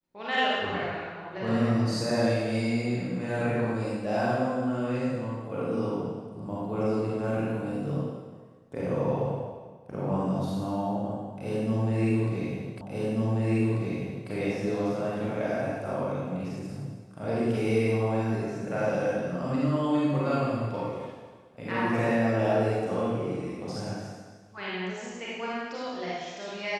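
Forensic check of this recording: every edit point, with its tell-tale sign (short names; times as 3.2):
12.81 repeat of the last 1.49 s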